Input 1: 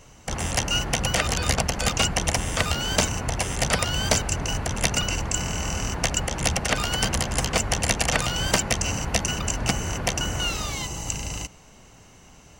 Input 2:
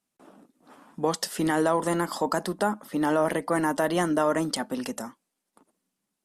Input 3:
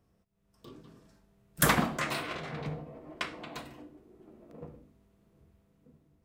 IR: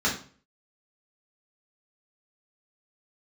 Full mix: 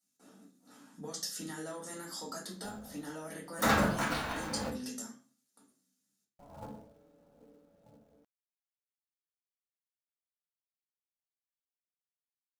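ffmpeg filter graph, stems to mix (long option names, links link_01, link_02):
-filter_complex "[1:a]equalizer=frequency=125:width_type=o:width=1:gain=5,equalizer=frequency=1000:width_type=o:width=1:gain=-6,equalizer=frequency=8000:width_type=o:width=1:gain=3,acompressor=threshold=-41dB:ratio=2,crystalizer=i=5.5:c=0,volume=-17.5dB,asplit=2[link_01][link_02];[link_02]volume=-4.5dB[link_03];[2:a]aeval=exprs='val(0)*sin(2*PI*370*n/s)':channel_layout=same,adelay=2000,volume=-1.5dB,asplit=3[link_04][link_05][link_06];[link_04]atrim=end=4.7,asetpts=PTS-STARTPTS,afade=type=out:start_time=4.696:duration=0.004:curve=hsin[link_07];[link_05]atrim=start=4.7:end=6.39,asetpts=PTS-STARTPTS,volume=0[link_08];[link_06]atrim=start=6.39,asetpts=PTS-STARTPTS,afade=type=in:duration=0.004:curve=hsin[link_09];[link_07][link_08][link_09]concat=n=3:v=0:a=1,asplit=2[link_10][link_11];[link_11]volume=-10.5dB[link_12];[link_10]acrusher=bits=3:mode=log:mix=0:aa=0.000001,alimiter=limit=-20dB:level=0:latency=1:release=115,volume=0dB[link_13];[3:a]atrim=start_sample=2205[link_14];[link_03][link_12]amix=inputs=2:normalize=0[link_15];[link_15][link_14]afir=irnorm=-1:irlink=0[link_16];[link_01][link_13][link_16]amix=inputs=3:normalize=0"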